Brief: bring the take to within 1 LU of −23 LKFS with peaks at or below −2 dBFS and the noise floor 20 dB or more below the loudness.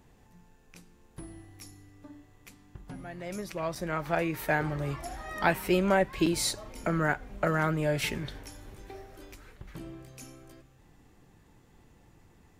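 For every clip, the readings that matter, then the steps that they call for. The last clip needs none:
number of dropouts 2; longest dropout 4.7 ms; integrated loudness −30.0 LKFS; sample peak −9.5 dBFS; target loudness −23.0 LKFS
→ repair the gap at 0:03.75/0:06.26, 4.7 ms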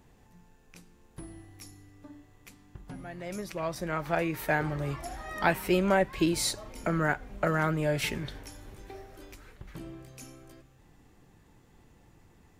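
number of dropouts 0; integrated loudness −30.0 LKFS; sample peak −9.5 dBFS; target loudness −23.0 LKFS
→ level +7 dB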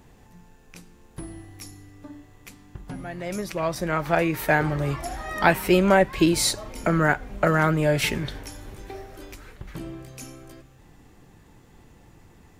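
integrated loudness −23.0 LKFS; sample peak −2.5 dBFS; background noise floor −54 dBFS

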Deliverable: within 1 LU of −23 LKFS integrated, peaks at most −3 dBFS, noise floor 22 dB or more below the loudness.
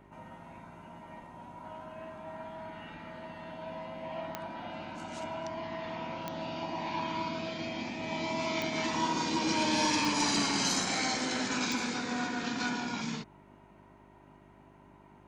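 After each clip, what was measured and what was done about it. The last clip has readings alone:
number of clicks 5; mains hum 50 Hz; hum harmonics up to 400 Hz; level of the hum −62 dBFS; integrated loudness −33.0 LKFS; sample peak −17.5 dBFS; target loudness −23.0 LKFS
→ click removal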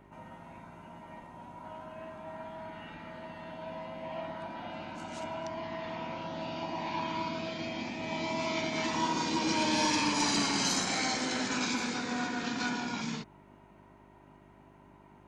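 number of clicks 0; mains hum 50 Hz; hum harmonics up to 400 Hz; level of the hum −62 dBFS
→ hum removal 50 Hz, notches 8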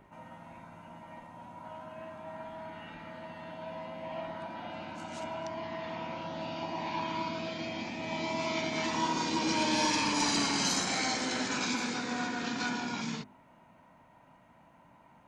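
mains hum none found; integrated loudness −33.0 LKFS; sample peak −20.0 dBFS; target loudness −23.0 LKFS
→ level +10 dB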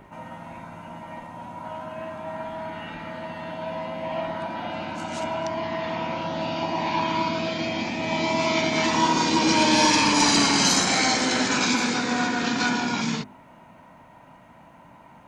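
integrated loudness −23.0 LKFS; sample peak −10.0 dBFS; background noise floor −50 dBFS

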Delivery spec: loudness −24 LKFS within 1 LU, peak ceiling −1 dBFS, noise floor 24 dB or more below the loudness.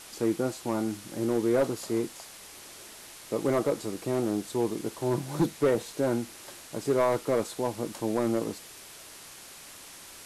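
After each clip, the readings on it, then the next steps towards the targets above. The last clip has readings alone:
share of clipped samples 0.8%; peaks flattened at −18.0 dBFS; background noise floor −48 dBFS; target noise floor −54 dBFS; integrated loudness −29.5 LKFS; sample peak −18.0 dBFS; target loudness −24.0 LKFS
→ clipped peaks rebuilt −18 dBFS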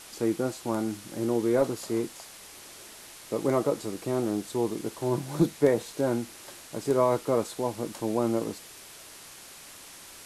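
share of clipped samples 0.0%; background noise floor −48 dBFS; target noise floor −53 dBFS
→ broadband denoise 6 dB, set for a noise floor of −48 dBFS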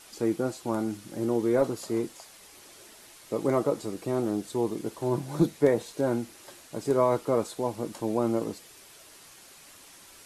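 background noise floor −52 dBFS; target noise floor −53 dBFS
→ broadband denoise 6 dB, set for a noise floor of −52 dBFS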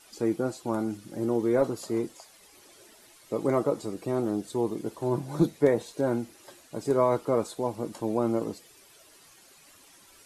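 background noise floor −56 dBFS; integrated loudness −28.5 LKFS; sample peak −9.0 dBFS; target loudness −24.0 LKFS
→ level +4.5 dB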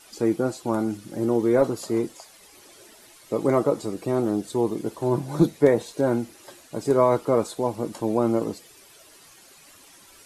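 integrated loudness −24.0 LKFS; sample peak −4.5 dBFS; background noise floor −52 dBFS

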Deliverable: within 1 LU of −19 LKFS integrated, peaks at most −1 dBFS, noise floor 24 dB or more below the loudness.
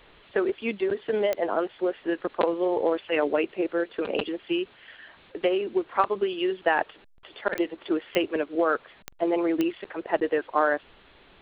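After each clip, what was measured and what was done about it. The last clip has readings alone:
number of clicks 5; integrated loudness −27.0 LKFS; sample peak −7.0 dBFS; target loudness −19.0 LKFS
→ click removal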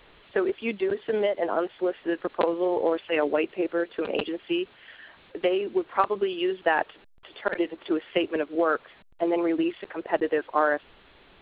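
number of clicks 0; integrated loudness −27.0 LKFS; sample peak −7.0 dBFS; target loudness −19.0 LKFS
→ level +8 dB
brickwall limiter −1 dBFS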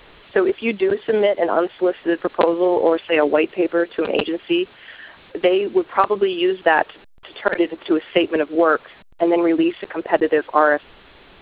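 integrated loudness −19.5 LKFS; sample peak −1.0 dBFS; background noise floor −47 dBFS

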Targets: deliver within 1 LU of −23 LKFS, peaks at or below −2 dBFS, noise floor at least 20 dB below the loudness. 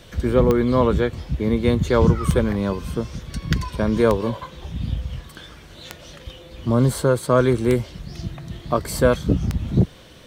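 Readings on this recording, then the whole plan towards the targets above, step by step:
number of clicks 6; integrated loudness −21.0 LKFS; sample peak −3.0 dBFS; target loudness −23.0 LKFS
→ click removal
level −2 dB

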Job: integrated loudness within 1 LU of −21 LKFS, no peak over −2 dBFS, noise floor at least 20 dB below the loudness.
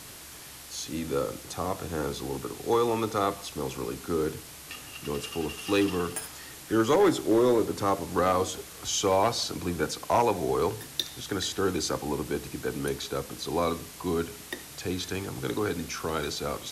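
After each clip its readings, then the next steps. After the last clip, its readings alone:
share of clipped samples 0.3%; peaks flattened at −16.0 dBFS; background noise floor −45 dBFS; target noise floor −49 dBFS; integrated loudness −29.0 LKFS; sample peak −16.0 dBFS; target loudness −21.0 LKFS
→ clipped peaks rebuilt −16 dBFS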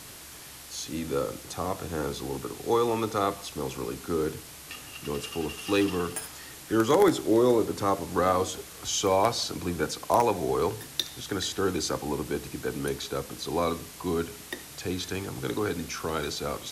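share of clipped samples 0.0%; background noise floor −45 dBFS; target noise floor −49 dBFS
→ broadband denoise 6 dB, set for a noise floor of −45 dBFS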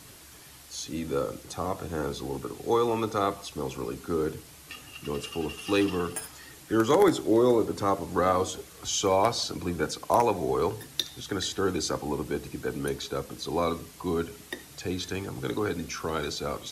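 background noise floor −50 dBFS; integrated loudness −29.0 LKFS; sample peak −7.5 dBFS; target loudness −21.0 LKFS
→ level +8 dB
brickwall limiter −2 dBFS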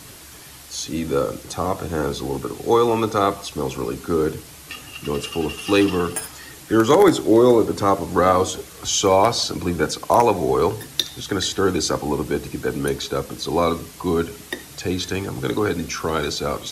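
integrated loudness −21.0 LKFS; sample peak −2.0 dBFS; background noise floor −42 dBFS

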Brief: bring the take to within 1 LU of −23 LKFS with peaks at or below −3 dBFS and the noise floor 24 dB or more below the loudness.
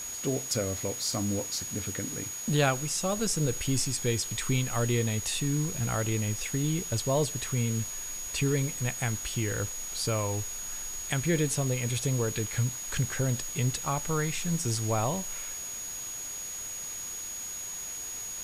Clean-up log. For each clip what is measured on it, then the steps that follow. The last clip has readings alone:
interfering tone 6,700 Hz; level of the tone −36 dBFS; background noise floor −38 dBFS; target noise floor −54 dBFS; integrated loudness −30.0 LKFS; sample peak −13.0 dBFS; target loudness −23.0 LKFS
→ notch filter 6,700 Hz, Q 30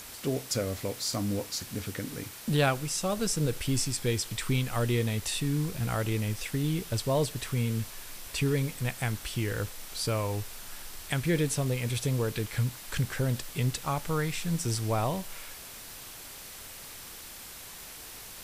interfering tone none found; background noise floor −45 dBFS; target noise floor −55 dBFS
→ broadband denoise 10 dB, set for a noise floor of −45 dBFS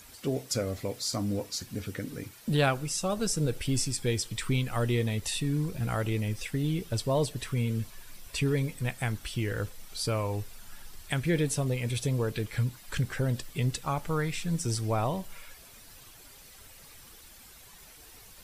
background noise floor −52 dBFS; target noise floor −55 dBFS
→ broadband denoise 6 dB, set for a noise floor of −52 dBFS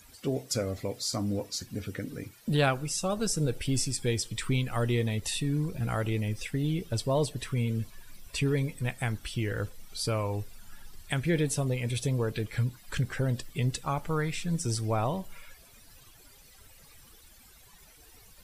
background noise floor −56 dBFS; integrated loudness −31.0 LKFS; sample peak −13.5 dBFS; target loudness −23.0 LKFS
→ level +8 dB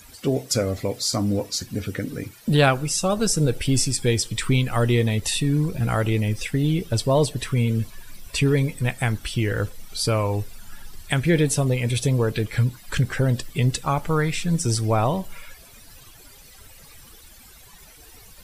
integrated loudness −23.0 LKFS; sample peak −5.5 dBFS; background noise floor −48 dBFS

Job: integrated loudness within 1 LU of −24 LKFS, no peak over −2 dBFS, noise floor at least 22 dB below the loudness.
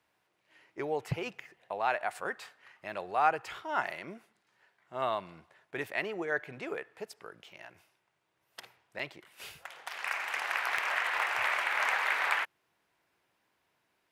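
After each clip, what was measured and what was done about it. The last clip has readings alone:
number of dropouts 2; longest dropout 4.0 ms; integrated loudness −33.0 LKFS; sample peak −12.5 dBFS; target loudness −24.0 LKFS
→ repair the gap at 0:08.99/0:10.78, 4 ms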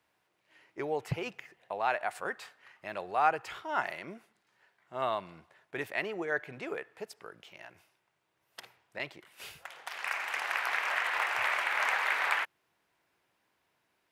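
number of dropouts 0; integrated loudness −33.0 LKFS; sample peak −12.5 dBFS; target loudness −24.0 LKFS
→ level +9 dB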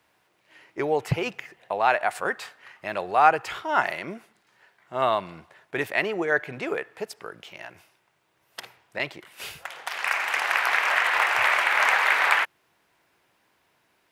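integrated loudness −24.0 LKFS; sample peak −3.5 dBFS; background noise floor −68 dBFS

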